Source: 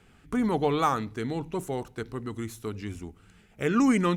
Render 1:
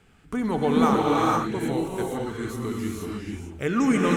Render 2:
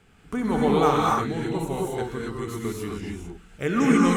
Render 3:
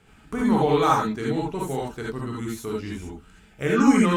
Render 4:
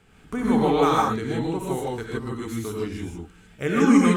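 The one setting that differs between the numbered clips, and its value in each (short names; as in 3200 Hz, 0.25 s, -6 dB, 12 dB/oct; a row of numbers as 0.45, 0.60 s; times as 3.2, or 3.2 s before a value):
non-linear reverb, gate: 0.51, 0.29, 0.1, 0.18 s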